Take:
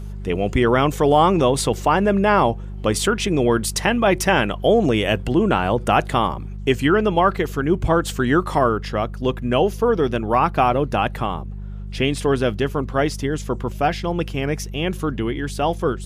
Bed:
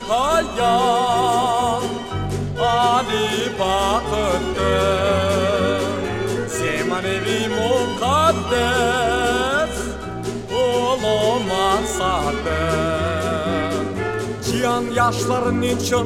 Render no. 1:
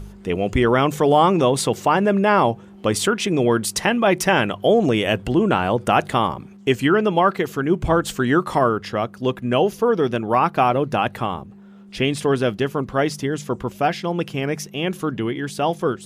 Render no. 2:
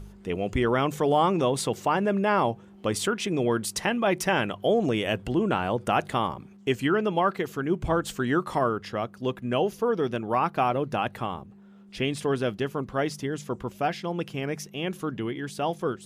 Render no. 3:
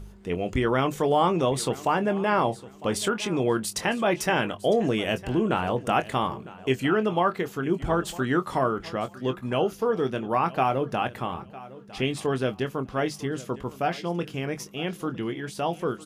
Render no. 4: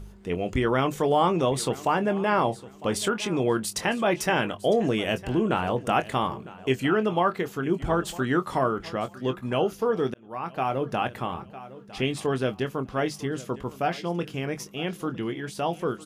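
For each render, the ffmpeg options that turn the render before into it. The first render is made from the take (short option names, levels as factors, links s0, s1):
-af "bandreject=f=50:t=h:w=4,bandreject=f=100:t=h:w=4,bandreject=f=150:t=h:w=4"
-af "volume=0.447"
-filter_complex "[0:a]asplit=2[s0][s1];[s1]adelay=23,volume=0.316[s2];[s0][s2]amix=inputs=2:normalize=0,aecho=1:1:955|1910:0.119|0.0273"
-filter_complex "[0:a]asplit=2[s0][s1];[s0]atrim=end=10.14,asetpts=PTS-STARTPTS,afade=t=out:st=10.136:d=0.004:c=hsin[s2];[s1]atrim=start=10.14,asetpts=PTS-STARTPTS,afade=t=in:d=0.76[s3];[s2][s3]concat=n=2:v=0:a=1"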